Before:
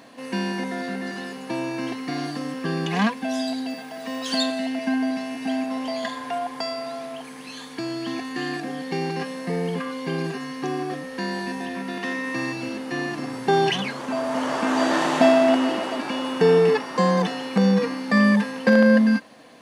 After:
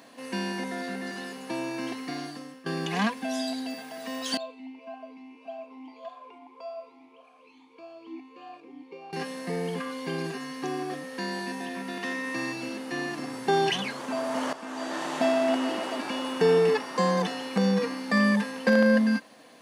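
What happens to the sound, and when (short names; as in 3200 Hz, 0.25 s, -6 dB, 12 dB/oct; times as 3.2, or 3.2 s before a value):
2–2.66 fade out, to -17 dB
4.37–9.13 vowel sweep a-u 1.7 Hz
14.53–15.95 fade in, from -14 dB
whole clip: Bessel high-pass 160 Hz; high shelf 6300 Hz +5.5 dB; gain -4 dB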